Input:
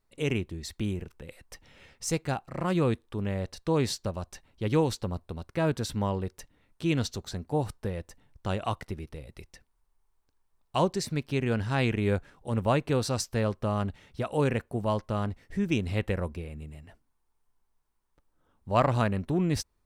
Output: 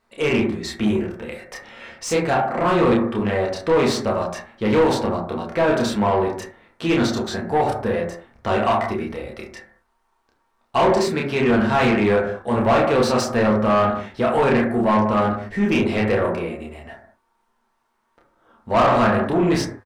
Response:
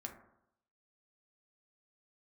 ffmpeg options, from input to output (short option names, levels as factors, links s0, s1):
-filter_complex "[0:a]asplit=2[s0][s1];[s1]adelay=29,volume=0.75[s2];[s0][s2]amix=inputs=2:normalize=0[s3];[1:a]atrim=start_sample=2205,afade=t=out:st=0.27:d=0.01,atrim=end_sample=12348[s4];[s3][s4]afir=irnorm=-1:irlink=0,asplit=2[s5][s6];[s6]highpass=f=720:p=1,volume=14.1,asoftclip=type=tanh:threshold=0.251[s7];[s5][s7]amix=inputs=2:normalize=0,lowpass=f=1800:p=1,volume=0.501,volume=1.68"